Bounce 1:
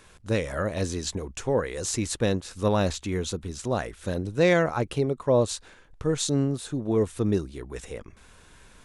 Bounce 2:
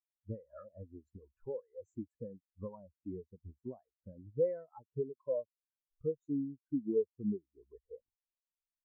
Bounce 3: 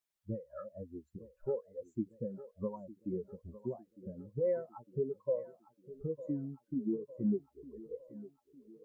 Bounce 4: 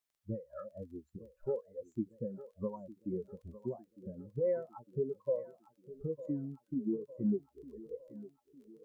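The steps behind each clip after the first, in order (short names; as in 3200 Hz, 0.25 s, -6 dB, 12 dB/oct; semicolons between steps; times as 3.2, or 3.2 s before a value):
graphic EQ 250/1000/2000/4000 Hz +3/+10/+5/-5 dB; compressor 6:1, threshold -30 dBFS, peak gain reduction 16.5 dB; spectral expander 4:1; gain -4 dB
limiter -32 dBFS, peak gain reduction 10.5 dB; flange 1.2 Hz, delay 4.7 ms, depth 1.2 ms, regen -35%; thinning echo 0.905 s, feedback 58%, high-pass 180 Hz, level -15 dB; gain +9.5 dB
crackle 17/s -59 dBFS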